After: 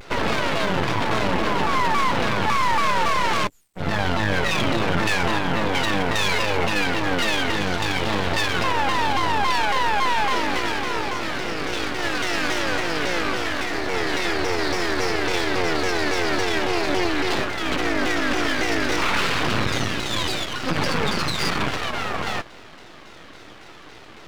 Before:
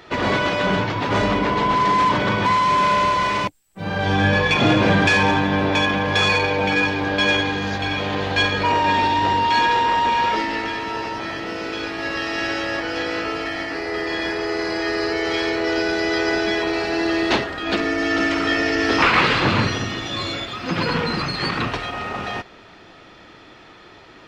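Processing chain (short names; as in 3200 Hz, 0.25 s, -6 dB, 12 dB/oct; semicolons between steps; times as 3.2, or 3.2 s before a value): limiter -15 dBFS, peak gain reduction 9.5 dB; half-wave rectifier; shaped vibrato saw down 3.6 Hz, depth 250 cents; gain +5.5 dB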